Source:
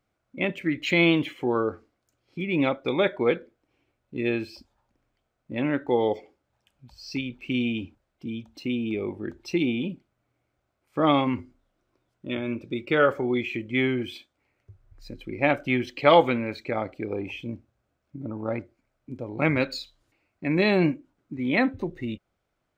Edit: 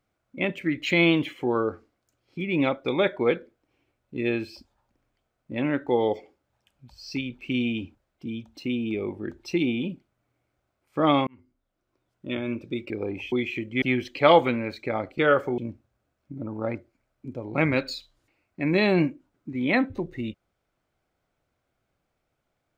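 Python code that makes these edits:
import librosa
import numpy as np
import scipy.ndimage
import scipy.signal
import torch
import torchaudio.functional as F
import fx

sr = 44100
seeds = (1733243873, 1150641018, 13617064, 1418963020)

y = fx.edit(x, sr, fx.fade_in_span(start_s=11.27, length_s=1.02),
    fx.swap(start_s=12.9, length_s=0.4, other_s=17.0, other_length_s=0.42),
    fx.cut(start_s=13.8, length_s=1.84), tone=tone)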